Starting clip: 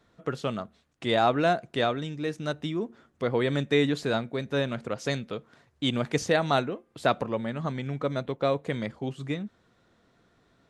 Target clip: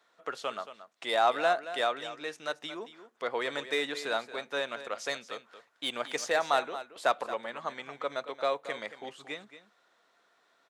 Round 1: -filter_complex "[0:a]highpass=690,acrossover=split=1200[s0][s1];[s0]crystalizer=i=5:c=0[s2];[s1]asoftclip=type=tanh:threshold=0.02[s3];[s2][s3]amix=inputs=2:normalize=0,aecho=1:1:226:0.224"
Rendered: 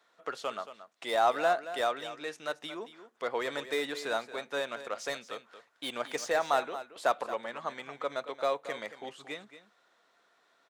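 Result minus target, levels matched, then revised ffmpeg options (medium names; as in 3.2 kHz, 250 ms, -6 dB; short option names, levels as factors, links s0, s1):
saturation: distortion +7 dB
-filter_complex "[0:a]highpass=690,acrossover=split=1200[s0][s1];[s0]crystalizer=i=5:c=0[s2];[s1]asoftclip=type=tanh:threshold=0.0531[s3];[s2][s3]amix=inputs=2:normalize=0,aecho=1:1:226:0.224"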